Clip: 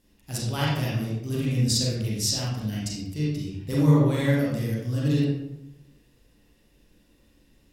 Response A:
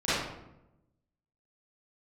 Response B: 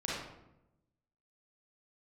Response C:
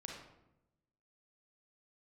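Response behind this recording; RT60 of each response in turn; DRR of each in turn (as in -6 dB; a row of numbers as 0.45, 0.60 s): B; 0.90, 0.90, 0.90 s; -15.0, -6.5, -0.5 dB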